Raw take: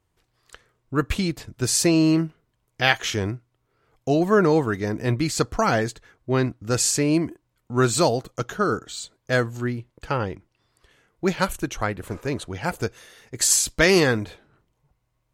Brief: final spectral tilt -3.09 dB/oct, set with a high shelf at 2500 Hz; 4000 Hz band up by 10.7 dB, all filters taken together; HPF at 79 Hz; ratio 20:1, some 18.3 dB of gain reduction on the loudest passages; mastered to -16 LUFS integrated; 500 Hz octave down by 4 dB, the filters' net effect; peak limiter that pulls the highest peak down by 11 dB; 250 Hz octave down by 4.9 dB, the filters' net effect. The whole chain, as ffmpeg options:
-af "highpass=79,equalizer=f=250:t=o:g=-6,equalizer=f=500:t=o:g=-3.5,highshelf=f=2.5k:g=7,equalizer=f=4k:t=o:g=7,acompressor=threshold=-25dB:ratio=20,volume=16.5dB,alimiter=limit=-4.5dB:level=0:latency=1"

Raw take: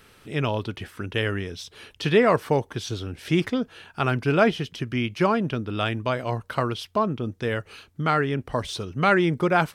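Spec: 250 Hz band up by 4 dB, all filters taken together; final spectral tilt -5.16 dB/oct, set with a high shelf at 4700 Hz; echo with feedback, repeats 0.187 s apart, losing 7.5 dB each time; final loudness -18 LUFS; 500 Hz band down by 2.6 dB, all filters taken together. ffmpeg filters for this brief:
-af "equalizer=f=250:t=o:g=7,equalizer=f=500:t=o:g=-6,highshelf=f=4.7k:g=3.5,aecho=1:1:187|374|561|748|935:0.422|0.177|0.0744|0.0312|0.0131,volume=5.5dB"

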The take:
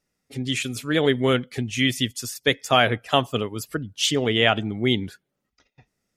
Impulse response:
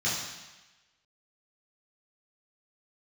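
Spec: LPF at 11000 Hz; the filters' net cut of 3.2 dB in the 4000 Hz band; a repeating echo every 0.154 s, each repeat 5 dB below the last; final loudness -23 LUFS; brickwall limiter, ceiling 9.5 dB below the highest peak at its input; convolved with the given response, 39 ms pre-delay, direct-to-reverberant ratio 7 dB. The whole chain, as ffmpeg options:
-filter_complex "[0:a]lowpass=11k,equalizer=f=4k:t=o:g=-4.5,alimiter=limit=-14dB:level=0:latency=1,aecho=1:1:154|308|462|616|770|924|1078:0.562|0.315|0.176|0.0988|0.0553|0.031|0.0173,asplit=2[a][b];[1:a]atrim=start_sample=2205,adelay=39[c];[b][c]afir=irnorm=-1:irlink=0,volume=-17dB[d];[a][d]amix=inputs=2:normalize=0,volume=2dB"

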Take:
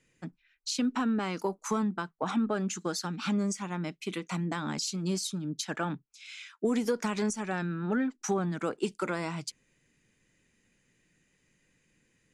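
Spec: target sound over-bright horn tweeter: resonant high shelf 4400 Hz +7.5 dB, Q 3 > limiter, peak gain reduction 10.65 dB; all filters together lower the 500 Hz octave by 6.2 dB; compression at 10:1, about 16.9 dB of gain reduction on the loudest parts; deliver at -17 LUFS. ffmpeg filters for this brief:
-af "equalizer=f=500:t=o:g=-8,acompressor=threshold=-44dB:ratio=10,highshelf=f=4.4k:t=q:w=3:g=7.5,volume=29dB,alimiter=limit=-4dB:level=0:latency=1"

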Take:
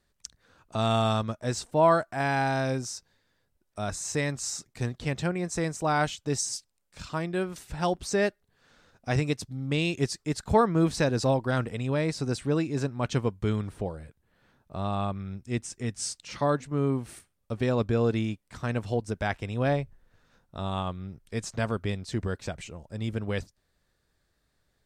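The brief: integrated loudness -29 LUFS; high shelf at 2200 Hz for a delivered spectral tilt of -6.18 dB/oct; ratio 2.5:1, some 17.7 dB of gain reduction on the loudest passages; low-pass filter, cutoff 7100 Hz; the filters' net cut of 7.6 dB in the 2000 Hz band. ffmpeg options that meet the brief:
-af "lowpass=7.1k,equalizer=f=2k:t=o:g=-7.5,highshelf=f=2.2k:g=-5.5,acompressor=threshold=-45dB:ratio=2.5,volume=15dB"

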